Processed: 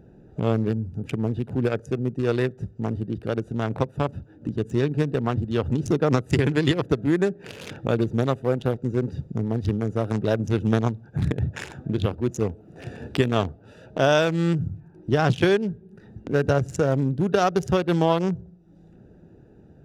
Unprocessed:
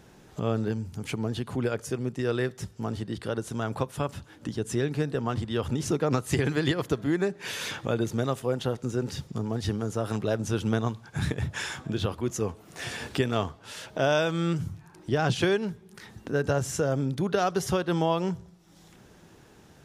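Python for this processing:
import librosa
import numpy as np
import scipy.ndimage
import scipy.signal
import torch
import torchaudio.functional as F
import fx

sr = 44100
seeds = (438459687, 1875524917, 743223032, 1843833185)

y = fx.wiener(x, sr, points=41)
y = y * 10.0 ** (5.5 / 20.0)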